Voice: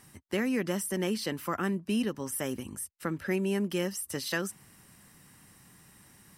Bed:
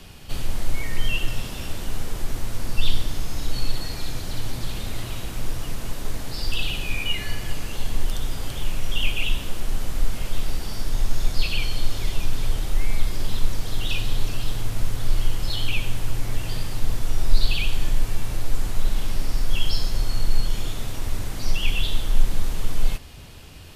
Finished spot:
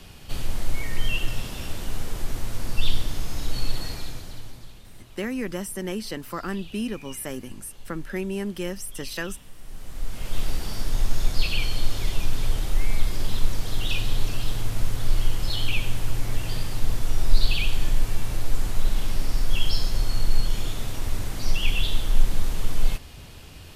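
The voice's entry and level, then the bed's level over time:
4.85 s, 0.0 dB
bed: 3.89 s -1.5 dB
4.84 s -18.5 dB
9.54 s -18.5 dB
10.4 s -0.5 dB

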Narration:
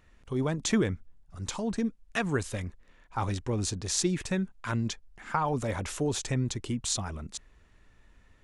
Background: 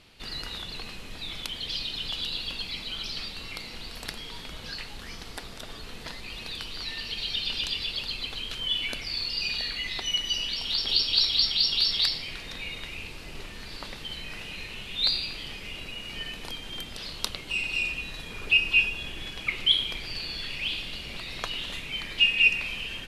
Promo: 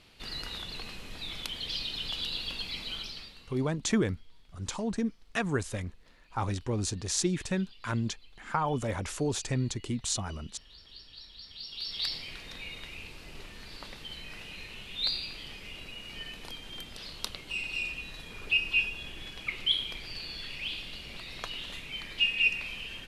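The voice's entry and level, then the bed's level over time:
3.20 s, -1.0 dB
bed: 2.95 s -2.5 dB
3.83 s -26.5 dB
11.36 s -26.5 dB
12.13 s -5.5 dB

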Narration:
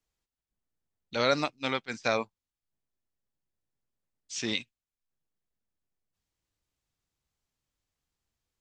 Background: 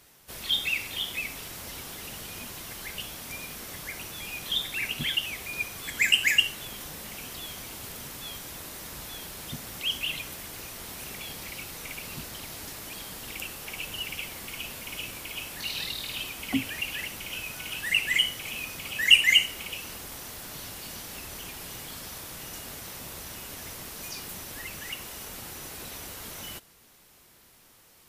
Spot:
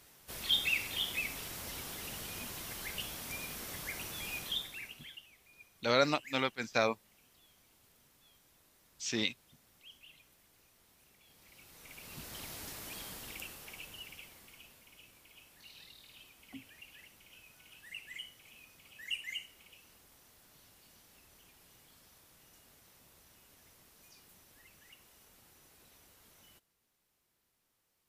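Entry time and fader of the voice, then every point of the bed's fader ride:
4.70 s, -2.0 dB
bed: 4.37 s -3.5 dB
5.28 s -26.5 dB
11.2 s -26.5 dB
12.38 s -5.5 dB
13.08 s -5.5 dB
14.92 s -22 dB

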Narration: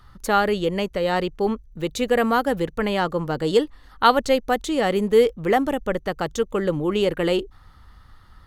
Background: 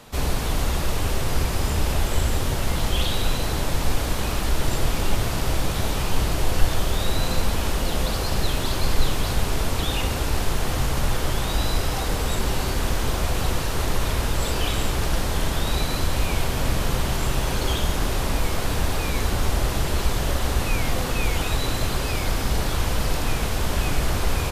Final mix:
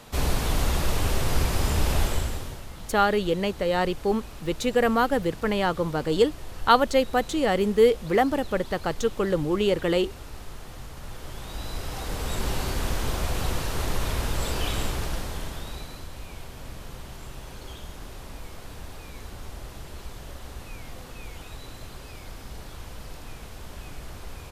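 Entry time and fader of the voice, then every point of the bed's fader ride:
2.65 s, -2.0 dB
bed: 2.04 s -1 dB
2.69 s -17.5 dB
10.98 s -17.5 dB
12.46 s -4 dB
14.82 s -4 dB
16.09 s -17 dB

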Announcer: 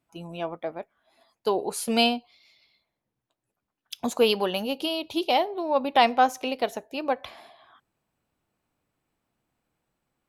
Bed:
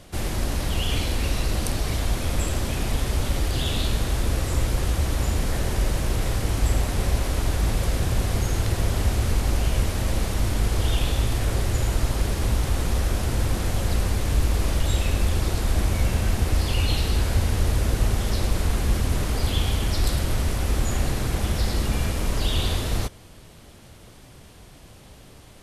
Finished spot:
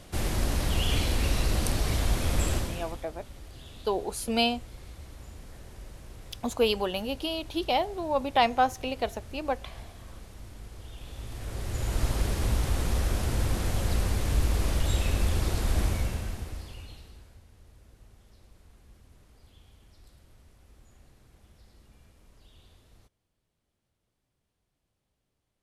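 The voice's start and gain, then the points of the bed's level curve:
2.40 s, -3.5 dB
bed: 2.54 s -2 dB
3.09 s -22 dB
10.94 s -22 dB
12.04 s -4 dB
15.86 s -4 dB
17.44 s -33.5 dB

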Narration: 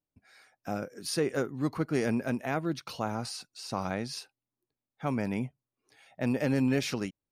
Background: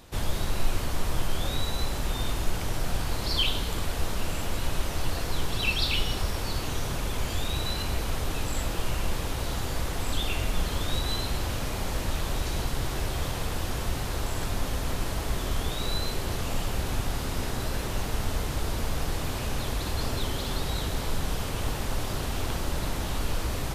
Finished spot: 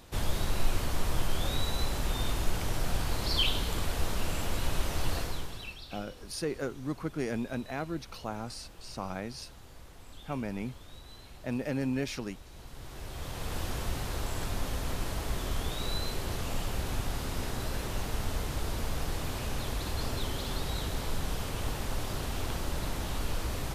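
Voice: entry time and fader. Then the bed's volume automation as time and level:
5.25 s, -4.5 dB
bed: 5.18 s -2 dB
5.84 s -21 dB
12.48 s -21 dB
13.57 s -4 dB

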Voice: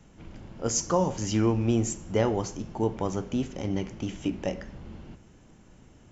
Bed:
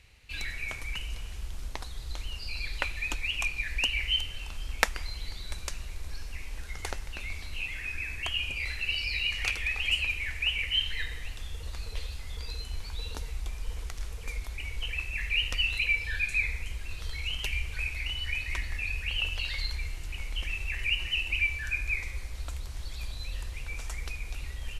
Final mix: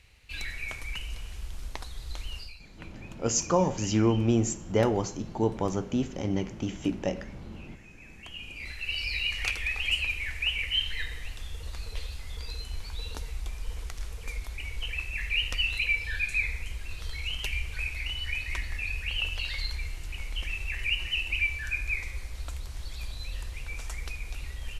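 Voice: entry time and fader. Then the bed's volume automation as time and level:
2.60 s, +0.5 dB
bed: 2.4 s -0.5 dB
2.63 s -18.5 dB
7.9 s -18.5 dB
9.02 s 0 dB

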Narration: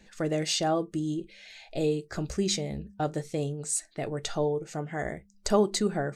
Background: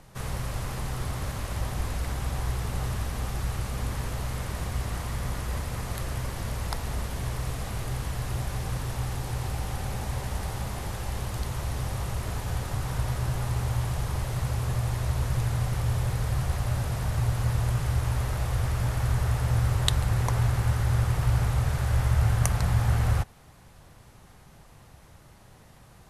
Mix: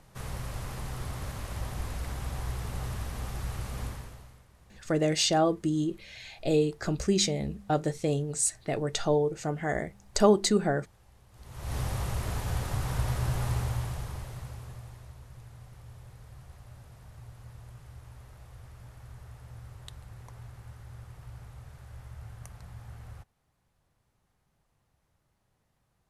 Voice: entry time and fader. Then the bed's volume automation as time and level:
4.70 s, +2.5 dB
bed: 3.85 s -5 dB
4.47 s -27 dB
11.28 s -27 dB
11.75 s -1 dB
13.52 s -1 dB
15.21 s -22 dB

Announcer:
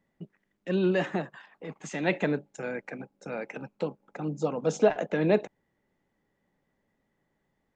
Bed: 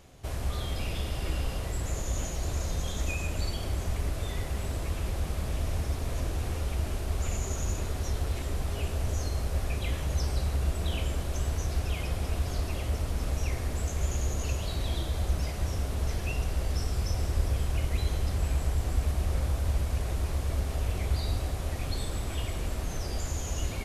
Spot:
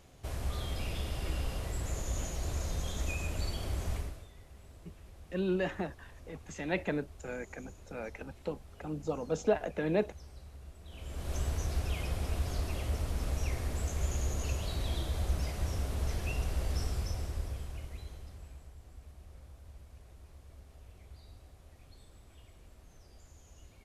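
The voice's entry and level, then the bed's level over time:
4.65 s, -6.0 dB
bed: 3.96 s -4 dB
4.3 s -21.5 dB
10.84 s -21.5 dB
11.32 s -3.5 dB
16.85 s -3.5 dB
18.74 s -24 dB

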